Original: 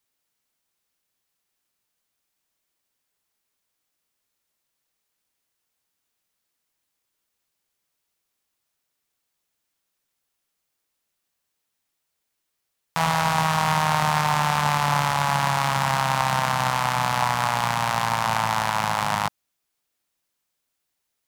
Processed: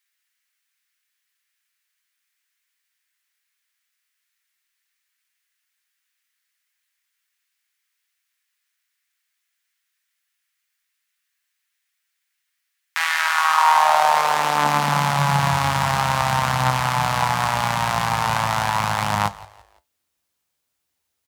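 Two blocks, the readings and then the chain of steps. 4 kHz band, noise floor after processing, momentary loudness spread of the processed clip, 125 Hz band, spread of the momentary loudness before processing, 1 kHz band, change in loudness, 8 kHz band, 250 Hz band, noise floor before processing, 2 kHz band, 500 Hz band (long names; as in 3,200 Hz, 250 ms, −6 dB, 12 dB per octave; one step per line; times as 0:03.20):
+2.0 dB, −77 dBFS, 6 LU, +2.5 dB, 3 LU, +3.0 dB, +3.0 dB, +2.0 dB, +1.0 dB, −79 dBFS, +3.5 dB, +3.0 dB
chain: echo with shifted repeats 169 ms, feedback 40%, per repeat −53 Hz, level −19.5 dB
flanger 0.17 Hz, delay 4.8 ms, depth 9 ms, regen +68%
high-pass filter sweep 1,800 Hz → 66 Hz, 0:13.17–0:15.85
level +6 dB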